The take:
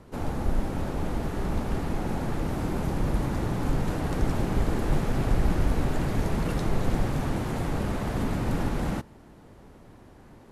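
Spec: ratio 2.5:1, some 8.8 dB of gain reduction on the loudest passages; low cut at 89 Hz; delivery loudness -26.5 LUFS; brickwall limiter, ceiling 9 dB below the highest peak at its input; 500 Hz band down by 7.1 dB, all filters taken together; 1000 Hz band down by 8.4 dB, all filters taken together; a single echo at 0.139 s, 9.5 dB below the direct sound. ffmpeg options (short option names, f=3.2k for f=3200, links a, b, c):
-af "highpass=89,equalizer=f=500:t=o:g=-7.5,equalizer=f=1k:t=o:g=-8.5,acompressor=threshold=-40dB:ratio=2.5,alimiter=level_in=12dB:limit=-24dB:level=0:latency=1,volume=-12dB,aecho=1:1:139:0.335,volume=18dB"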